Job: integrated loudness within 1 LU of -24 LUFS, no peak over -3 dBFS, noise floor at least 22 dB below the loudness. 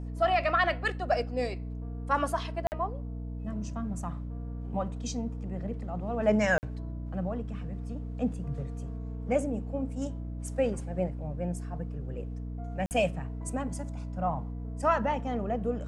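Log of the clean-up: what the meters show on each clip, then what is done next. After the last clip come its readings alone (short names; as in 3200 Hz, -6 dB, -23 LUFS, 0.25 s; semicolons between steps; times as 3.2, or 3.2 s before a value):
dropouts 3; longest dropout 49 ms; hum 60 Hz; harmonics up to 300 Hz; hum level -34 dBFS; loudness -32.0 LUFS; peak -13.0 dBFS; loudness target -24.0 LUFS
-> interpolate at 2.67/6.58/12.86, 49 ms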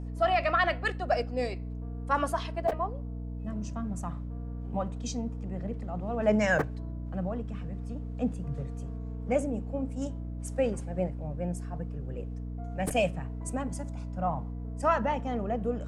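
dropouts 0; hum 60 Hz; harmonics up to 300 Hz; hum level -34 dBFS
-> notches 60/120/180/240/300 Hz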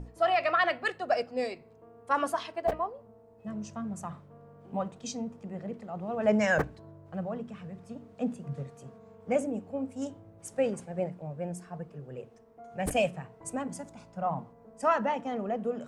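hum none; loudness -32.5 LUFS; peak -13.5 dBFS; loudness target -24.0 LUFS
-> gain +8.5 dB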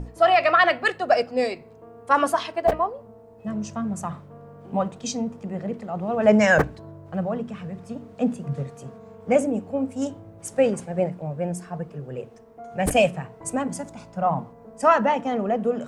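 loudness -24.0 LUFS; peak -5.0 dBFS; noise floor -48 dBFS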